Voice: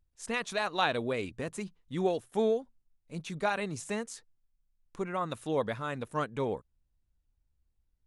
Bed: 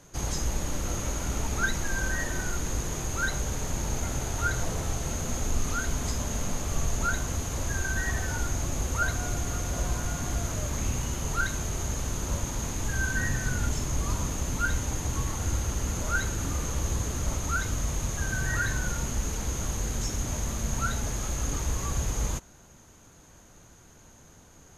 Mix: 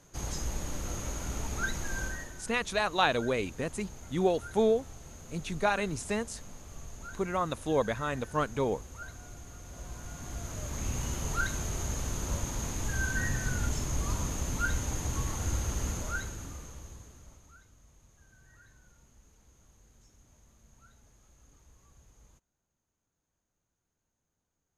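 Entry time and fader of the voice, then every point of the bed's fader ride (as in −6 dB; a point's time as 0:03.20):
2.20 s, +2.5 dB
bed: 0:02.03 −5.5 dB
0:02.41 −17 dB
0:09.58 −17 dB
0:11.06 −3 dB
0:15.87 −3 dB
0:17.71 −31 dB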